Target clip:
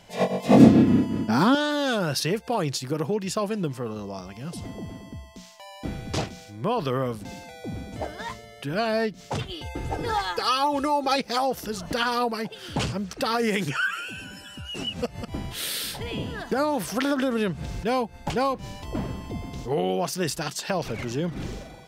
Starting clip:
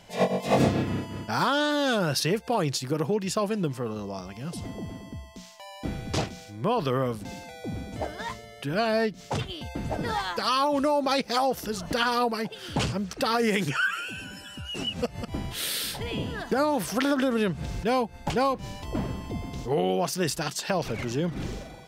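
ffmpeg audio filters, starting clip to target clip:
-filter_complex "[0:a]asettb=1/sr,asplit=3[a][b][c];[a]atrim=end=0.494[d];[b]atrim=start=0.49:end=1.55,asetpts=PTS-STARTPTS,afade=t=in:d=0.004:c=qsin,afade=t=out:st=1.056:d=0.004:c=qsin,equalizer=f=250:w=1.1:g=14.5[e];[c]atrim=start=1.546[f];[d][e]acrossfade=d=0.004:c1=hsin:c2=qsin[g];[g][f]acrossfade=d=0.004:c1=qsin:c2=hsin,asettb=1/sr,asplit=3[h][i][j];[h]atrim=end=9.514[k];[i]atrim=start=9.51:end=11.16,asetpts=PTS-STARTPTS,afade=t=in:d=0.004:c=qsin,afade=t=out:st=1.646:d=0.004:c=qsin,aecho=1:1:2.4:0.67,atrim=end_sample=72765[l];[j]atrim=start=11.156[m];[k][l]acrossfade=d=0.004:c1=hsin:c2=qsin[n];[n][m]acrossfade=d=0.004:c1=qsin:c2=hsin"

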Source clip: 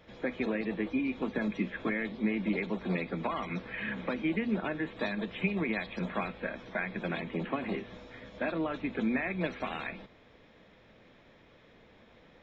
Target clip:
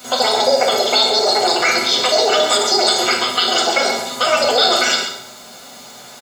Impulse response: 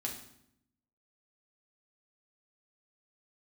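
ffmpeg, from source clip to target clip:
-filter_complex "[0:a]bandreject=f=460:w=14,asetrate=88200,aresample=44100[a];[1:a]atrim=start_sample=2205[b];[a][b]afir=irnorm=-1:irlink=0,asplit=2[c][d];[d]alimiter=level_in=1dB:limit=-24dB:level=0:latency=1,volume=-1dB,volume=2.5dB[e];[c][e]amix=inputs=2:normalize=0,acontrast=90,highpass=f=160:w=0.5412,highpass=f=160:w=1.3066,aemphasis=mode=production:type=50kf,aecho=1:1:1.4:0.57,acrusher=bits=6:mix=0:aa=0.5,asplit=2[f][g];[g]aecho=0:1:132:0.335[h];[f][h]amix=inputs=2:normalize=0,volume=2dB"

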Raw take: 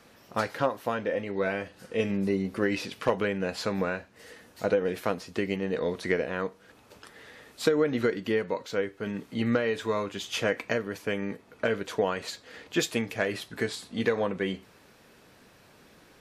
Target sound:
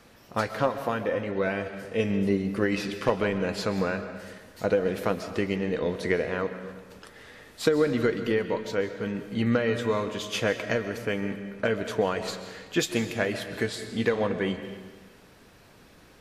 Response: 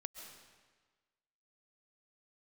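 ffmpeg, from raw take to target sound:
-filter_complex "[0:a]asplit=2[a][b];[b]lowshelf=f=110:g=12[c];[1:a]atrim=start_sample=2205[d];[c][d]afir=irnorm=-1:irlink=0,volume=7dB[e];[a][e]amix=inputs=2:normalize=0,volume=-6.5dB"

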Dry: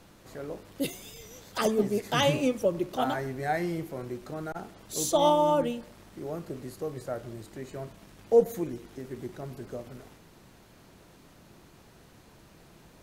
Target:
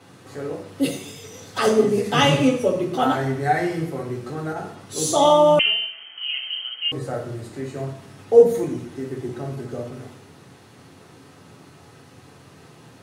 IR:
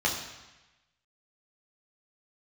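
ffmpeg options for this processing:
-filter_complex "[1:a]atrim=start_sample=2205,asetrate=66150,aresample=44100[a];[0:a][a]afir=irnorm=-1:irlink=0,asettb=1/sr,asplit=3[b][c][d];[b]atrim=end=5.594[e];[c]atrim=start=5.59:end=6.92,asetpts=PTS-STARTPTS,afade=t=in:d=0.004:c=qsin,afade=t=out:st=1.326:d=0.004:c=qsin,lowpass=f=2.8k:t=q:w=0.5098,lowpass=f=2.8k:t=q:w=0.6013,lowpass=f=2.8k:t=q:w=0.9,lowpass=f=2.8k:t=q:w=2.563,afreqshift=-3300[f];[d]atrim=start=6.916[g];[e][f]acrossfade=d=0.004:c1=hsin:c2=qsin[h];[h][g]acrossfade=d=0.004:c1=qsin:c2=hsin"

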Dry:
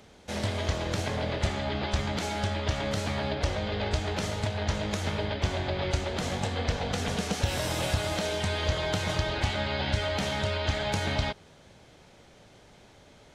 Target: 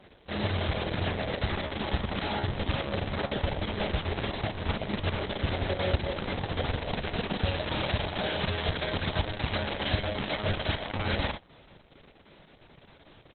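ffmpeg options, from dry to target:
-af "aecho=1:1:34|54:0.282|0.398" -ar 48000 -c:a libopus -b:a 6k

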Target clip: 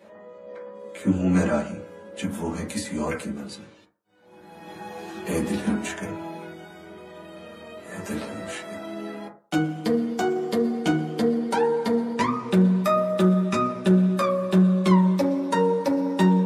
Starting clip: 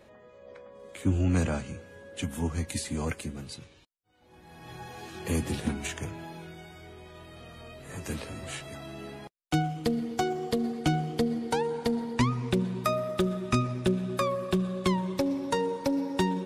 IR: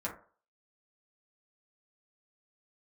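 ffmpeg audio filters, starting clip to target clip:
-filter_complex "[0:a]highpass=170[a];[1:a]atrim=start_sample=2205[b];[a][b]afir=irnorm=-1:irlink=0,volume=3dB"

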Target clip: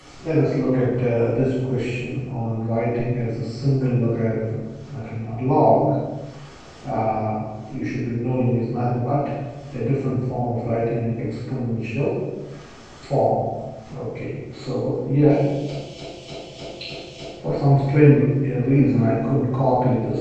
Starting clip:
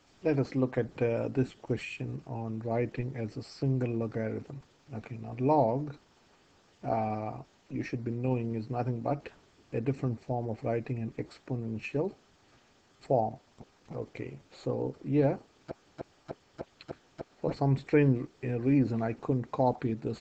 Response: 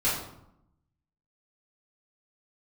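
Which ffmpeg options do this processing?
-filter_complex "[0:a]asettb=1/sr,asplit=3[a][b][c];[a]atrim=end=15.294[d];[b]atrim=start=15.29:end=17.31,asetpts=PTS-STARTPTS,afade=t=in:d=0.004:c=qsin,afade=t=out:st=2.016:d=0.004:c=qsin,highshelf=f=2.1k:t=q:w=3:g=11[e];[c]atrim=start=17.306[f];[d][e]acrossfade=d=0.004:c1=hsin:c2=qsin[g];[g][f]acrossfade=d=0.004:c1=qsin:c2=hsin,acompressor=mode=upward:threshold=-40dB:ratio=2.5[h];[1:a]atrim=start_sample=2205,afade=t=out:st=0.39:d=0.01,atrim=end_sample=17640,asetrate=22932,aresample=44100[i];[h][i]afir=irnorm=-1:irlink=0,volume=-7dB"

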